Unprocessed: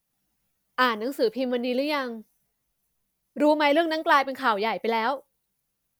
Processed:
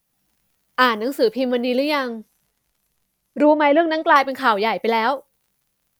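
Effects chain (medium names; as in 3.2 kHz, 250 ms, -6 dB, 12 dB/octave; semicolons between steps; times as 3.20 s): 2.06–4.16 s: low-pass that closes with the level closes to 2 kHz, closed at -17 dBFS; crackle 61 per s -57 dBFS; trim +6 dB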